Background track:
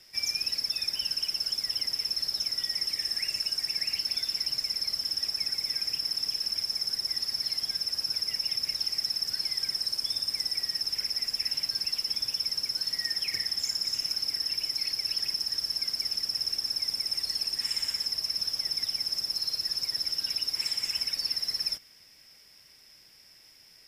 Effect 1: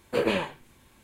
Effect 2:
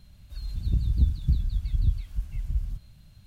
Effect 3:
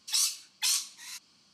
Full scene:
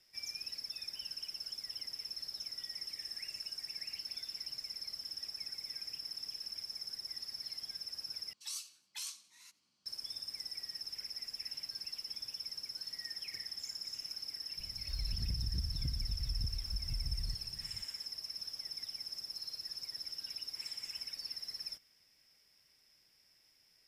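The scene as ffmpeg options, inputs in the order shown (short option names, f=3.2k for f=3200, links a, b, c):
-filter_complex "[0:a]volume=-13dB[a];[3:a]aecho=1:1:90|180|270:0.0708|0.0326|0.015[b];[2:a]acompressor=threshold=-31dB:ratio=6:attack=3.2:release=140:knee=1:detection=peak[c];[a]asplit=2[d][e];[d]atrim=end=8.334[f];[b]atrim=end=1.53,asetpts=PTS-STARTPTS,volume=-15.5dB[g];[e]atrim=start=9.856[h];[c]atrim=end=3.26,asetpts=PTS-STARTPTS,volume=-2.5dB,afade=t=in:d=0.004:c=hsin,afade=t=out:st=3.256:d=0.004:c=hsin,adelay=14570[i];[f][g]acrossfade=d=0.004:c1=hsin:c2=hsin[j];[j][h]acrossfade=d=0.004:c1=hsin:c2=hsin[k];[k][i]amix=inputs=2:normalize=0"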